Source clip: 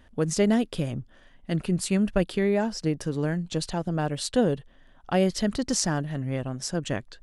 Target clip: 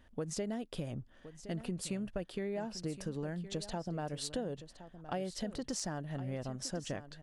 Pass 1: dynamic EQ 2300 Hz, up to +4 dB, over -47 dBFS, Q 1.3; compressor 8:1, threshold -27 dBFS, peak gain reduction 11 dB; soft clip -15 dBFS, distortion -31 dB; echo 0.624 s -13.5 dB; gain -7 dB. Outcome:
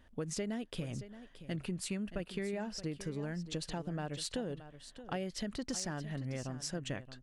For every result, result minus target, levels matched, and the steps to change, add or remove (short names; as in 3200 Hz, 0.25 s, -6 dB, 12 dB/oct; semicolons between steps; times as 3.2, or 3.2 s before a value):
echo 0.443 s early; 2000 Hz band +3.0 dB
change: echo 1.067 s -13.5 dB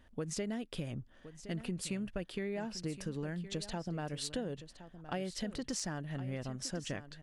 2000 Hz band +3.0 dB
change: dynamic EQ 670 Hz, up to +4 dB, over -47 dBFS, Q 1.3